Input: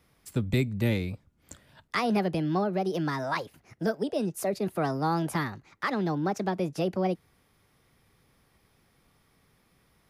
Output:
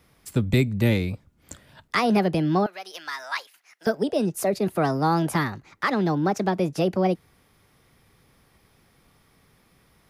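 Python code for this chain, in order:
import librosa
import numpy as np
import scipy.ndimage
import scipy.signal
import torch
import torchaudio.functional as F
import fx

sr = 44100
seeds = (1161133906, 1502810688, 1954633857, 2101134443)

y = fx.highpass(x, sr, hz=1500.0, slope=12, at=(2.66, 3.87))
y = F.gain(torch.from_numpy(y), 5.5).numpy()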